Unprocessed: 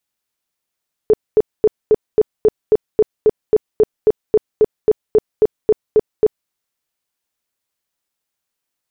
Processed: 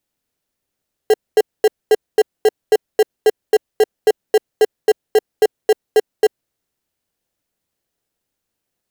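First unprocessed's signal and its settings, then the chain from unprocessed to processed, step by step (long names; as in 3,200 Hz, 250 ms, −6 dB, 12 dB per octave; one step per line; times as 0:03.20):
tone bursts 430 Hz, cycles 15, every 0.27 s, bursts 20, −6.5 dBFS
inverse Chebyshev high-pass filter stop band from 200 Hz, stop band 40 dB
in parallel at −6 dB: decimation without filtering 37×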